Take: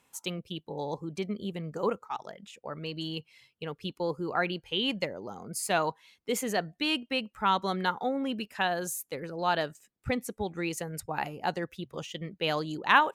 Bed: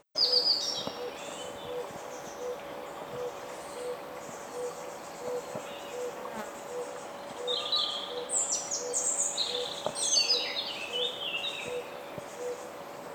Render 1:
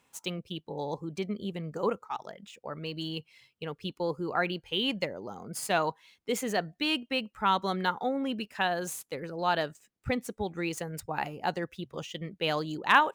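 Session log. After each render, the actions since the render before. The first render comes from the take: median filter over 3 samples; hard clipper -9.5 dBFS, distortion -39 dB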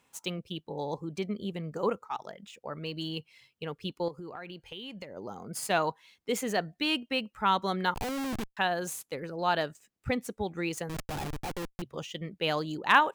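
4.08–5.17 s: compression, threshold -39 dBFS; 7.94–8.57 s: Schmitt trigger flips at -34 dBFS; 10.89–11.82 s: Schmitt trigger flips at -36.5 dBFS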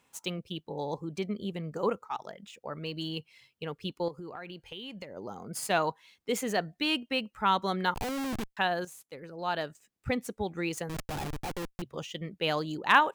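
8.85–10.18 s: fade in, from -12.5 dB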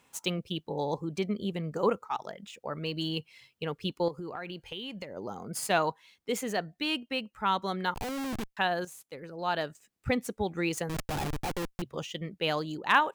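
gain riding within 4 dB 2 s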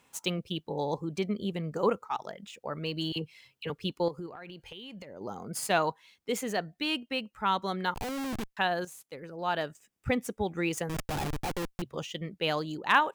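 3.12–3.70 s: phase dispersion lows, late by 42 ms, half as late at 1.1 kHz; 4.26–5.21 s: compression 3:1, threshold -42 dBFS; 9.16–11.01 s: band-stop 4.2 kHz, Q 8.8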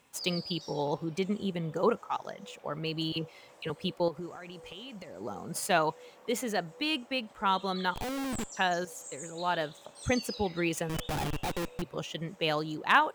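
add bed -16 dB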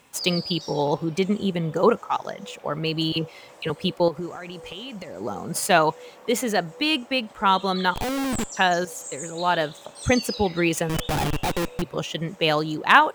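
trim +8.5 dB

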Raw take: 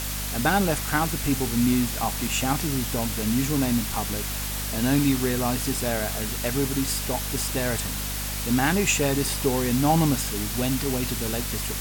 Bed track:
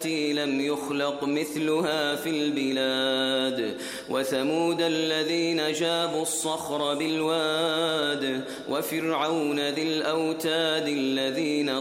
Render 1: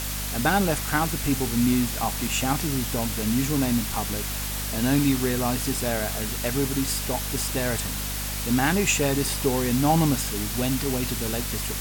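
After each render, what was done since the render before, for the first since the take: no audible change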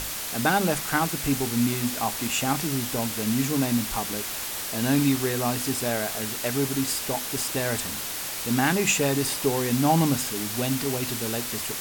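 hum notches 50/100/150/200/250 Hz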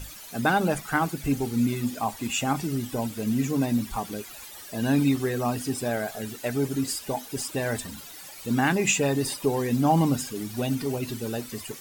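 noise reduction 15 dB, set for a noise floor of -32 dBFS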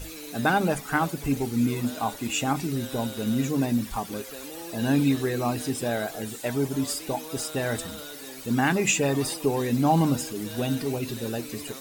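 add bed track -16 dB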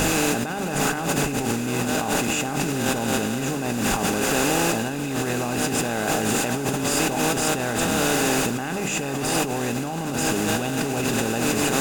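spectral levelling over time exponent 0.4; compressor with a negative ratio -24 dBFS, ratio -1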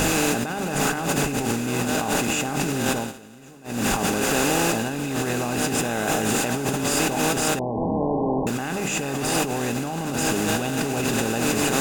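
2.99–3.78 s: dip -20 dB, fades 0.14 s; 5.80–6.27 s: band-stop 4.6 kHz; 7.59–8.47 s: brick-wall FIR low-pass 1.1 kHz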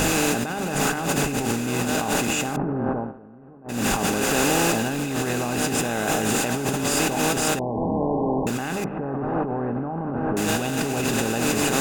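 2.56–3.69 s: low-pass 1.2 kHz 24 dB/octave; 4.38–5.04 s: jump at every zero crossing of -32.5 dBFS; 8.84–10.37 s: low-pass 1.3 kHz 24 dB/octave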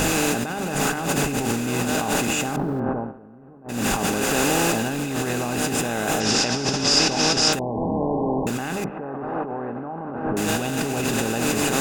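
1.10–2.80 s: companding laws mixed up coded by mu; 6.20–7.53 s: resonant low-pass 5.3 kHz, resonance Q 6.7; 8.90–10.25 s: bass shelf 230 Hz -11 dB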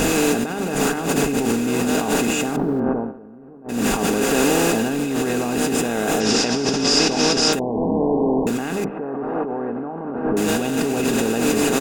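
peaking EQ 360 Hz +6.5 dB 1 oct; comb 4.3 ms, depth 31%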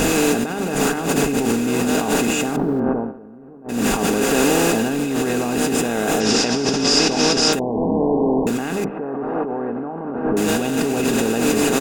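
trim +1 dB; peak limiter -3 dBFS, peak gain reduction 1 dB

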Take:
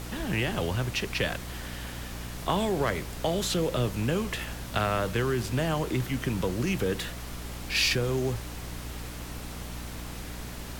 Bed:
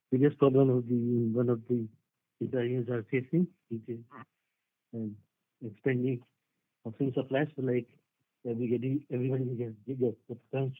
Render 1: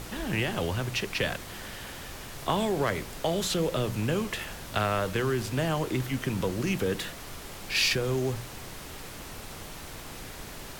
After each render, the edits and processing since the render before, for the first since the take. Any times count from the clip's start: de-hum 60 Hz, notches 5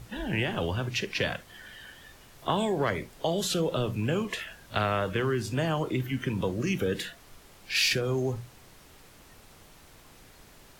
noise print and reduce 12 dB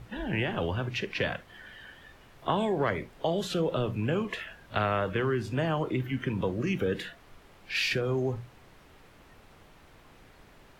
tone controls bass -1 dB, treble -12 dB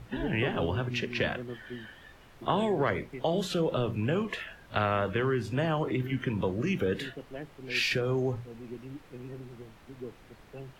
add bed -12 dB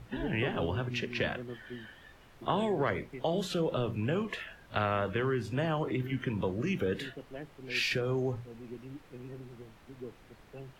trim -2.5 dB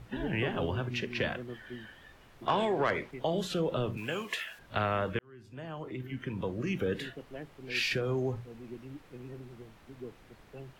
2.47–3.11 s: overdrive pedal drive 11 dB, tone 4.3 kHz, clips at -17 dBFS; 3.97–4.59 s: tilt EQ +3.5 dB/octave; 5.19–6.88 s: fade in

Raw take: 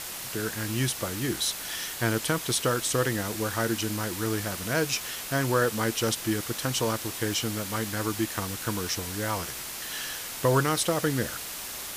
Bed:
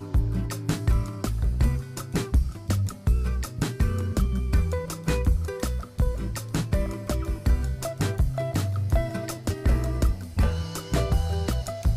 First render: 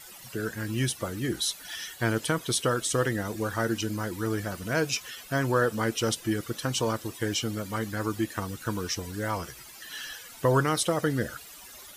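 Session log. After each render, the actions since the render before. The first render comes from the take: noise reduction 15 dB, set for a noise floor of -37 dBFS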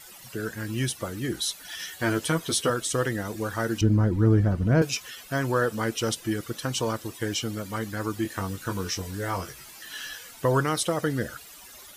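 1.78–2.70 s: doubling 12 ms -3 dB; 3.81–4.82 s: tilt EQ -4.5 dB/octave; 8.23–10.31 s: doubling 21 ms -5 dB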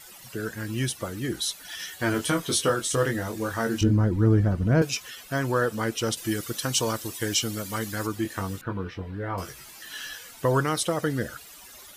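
2.12–3.92 s: doubling 22 ms -5 dB; 6.17–8.07 s: treble shelf 3.3 kHz +8.5 dB; 8.61–9.38 s: distance through air 460 m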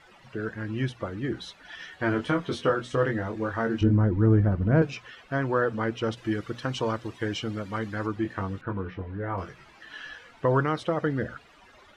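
low-pass 2.2 kHz 12 dB/octave; hum notches 60/120/180/240 Hz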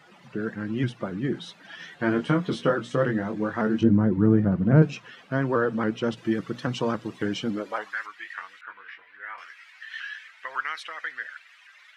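high-pass sweep 170 Hz -> 1.9 kHz, 7.46–8.02 s; vibrato with a chosen wave saw up 3.6 Hz, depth 100 cents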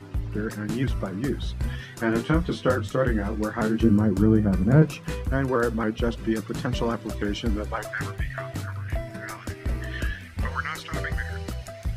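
add bed -6.5 dB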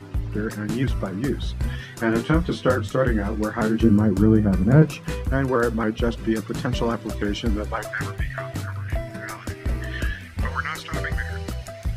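trim +2.5 dB

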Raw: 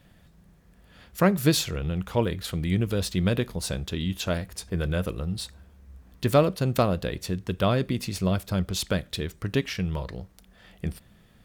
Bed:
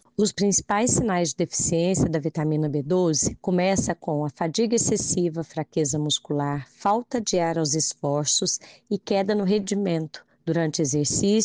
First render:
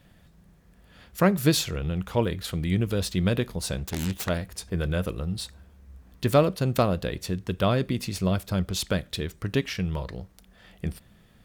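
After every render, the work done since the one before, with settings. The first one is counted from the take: 3.78–4.29 s: self-modulated delay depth 0.53 ms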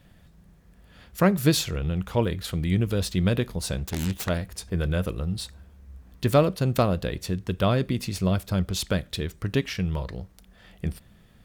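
bass shelf 120 Hz +3.5 dB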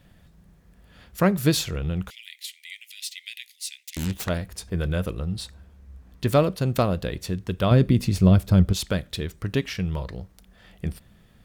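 2.10–3.97 s: Chebyshev high-pass 2 kHz, order 6; 5.09–6.28 s: treble shelf 11 kHz -5.5 dB; 7.71–8.73 s: bass shelf 400 Hz +9.5 dB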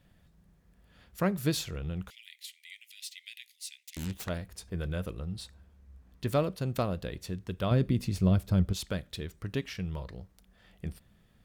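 trim -8.5 dB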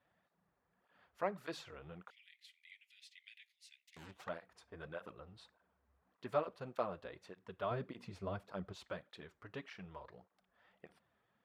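band-pass filter 1 kHz, Q 1.1; cancelling through-zero flanger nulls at 1.7 Hz, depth 6.5 ms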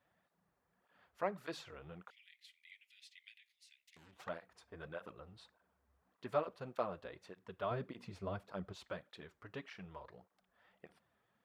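3.31–4.13 s: compression, threshold -59 dBFS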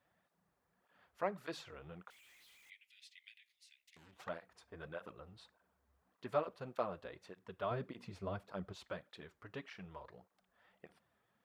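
2.10–2.70 s: one-bit comparator

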